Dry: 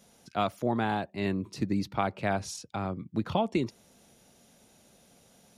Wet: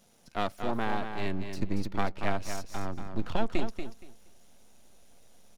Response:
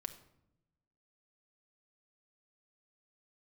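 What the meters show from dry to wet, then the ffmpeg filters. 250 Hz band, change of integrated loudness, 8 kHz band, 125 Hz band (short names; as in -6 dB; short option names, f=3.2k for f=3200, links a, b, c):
-4.0 dB, -3.0 dB, -3.0 dB, -3.5 dB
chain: -af "aeval=exprs='if(lt(val(0),0),0.251*val(0),val(0))':c=same,asubboost=boost=5.5:cutoff=53,aecho=1:1:235|470|705:0.422|0.0801|0.0152"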